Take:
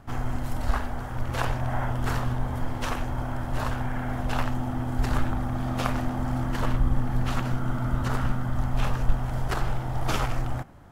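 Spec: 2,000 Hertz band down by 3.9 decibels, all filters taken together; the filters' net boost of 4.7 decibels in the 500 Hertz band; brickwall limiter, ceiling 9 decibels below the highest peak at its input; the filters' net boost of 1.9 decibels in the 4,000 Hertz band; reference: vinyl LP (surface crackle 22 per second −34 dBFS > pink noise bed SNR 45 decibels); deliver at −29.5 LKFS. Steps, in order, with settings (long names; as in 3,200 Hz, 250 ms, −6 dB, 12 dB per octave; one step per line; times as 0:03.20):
parametric band 500 Hz +6.5 dB
parametric band 2,000 Hz −7 dB
parametric band 4,000 Hz +5 dB
brickwall limiter −16.5 dBFS
surface crackle 22 per second −34 dBFS
pink noise bed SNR 45 dB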